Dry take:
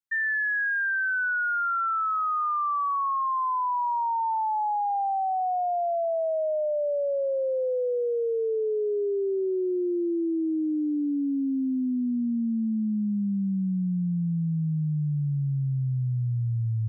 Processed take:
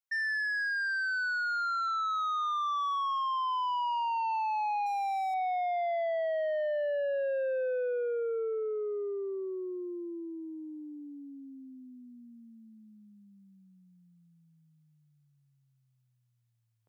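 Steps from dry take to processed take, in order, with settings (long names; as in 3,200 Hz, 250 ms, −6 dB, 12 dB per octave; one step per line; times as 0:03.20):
high-pass filter 530 Hz 24 dB per octave
speech leveller within 3 dB
soft clipping −28.5 dBFS, distortion −16 dB
0:04.86–0:05.34: mid-hump overdrive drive 31 dB, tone 1,600 Hz, clips at −29 dBFS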